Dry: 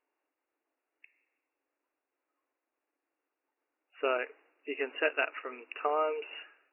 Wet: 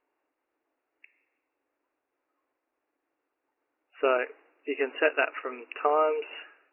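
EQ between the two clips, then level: air absorption 310 m; +7.0 dB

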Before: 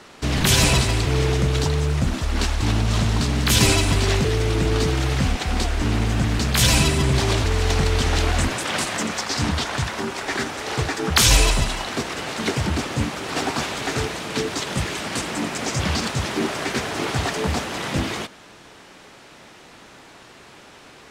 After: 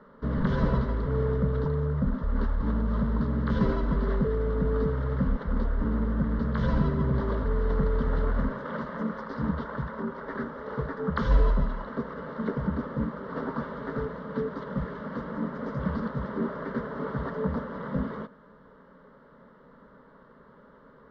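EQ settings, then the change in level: air absorption 230 m; tape spacing loss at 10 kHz 44 dB; fixed phaser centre 500 Hz, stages 8; 0.0 dB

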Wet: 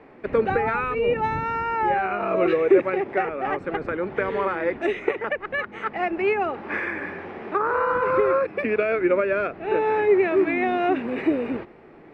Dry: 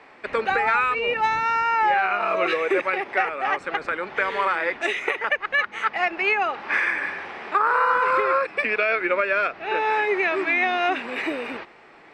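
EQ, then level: EQ curve 380 Hz 0 dB, 950 Hz -11 dB, 4500 Hz -16 dB; dynamic EQ 100 Hz, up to +5 dB, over -50 dBFS, Q 1.2; tone controls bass +3 dB, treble -7 dB; +7.0 dB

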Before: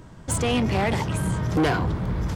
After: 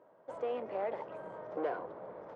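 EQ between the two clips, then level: dynamic EQ 750 Hz, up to -4 dB, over -36 dBFS, Q 2.4; ladder band-pass 640 Hz, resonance 55%; 0.0 dB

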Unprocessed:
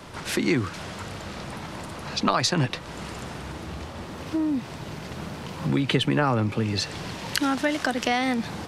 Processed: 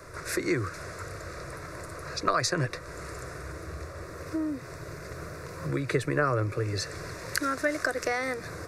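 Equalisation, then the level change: fixed phaser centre 840 Hz, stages 6; 0.0 dB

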